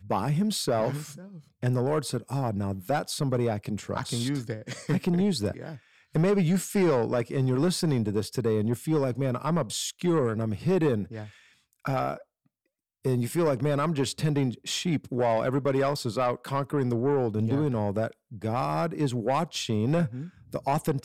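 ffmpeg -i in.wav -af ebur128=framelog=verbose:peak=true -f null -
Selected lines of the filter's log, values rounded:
Integrated loudness:
  I:         -27.6 LUFS
  Threshold: -37.9 LUFS
Loudness range:
  LRA:         3.5 LU
  Threshold: -47.9 LUFS
  LRA low:   -29.8 LUFS
  LRA high:  -26.3 LUFS
True peak:
  Peak:      -17.5 dBFS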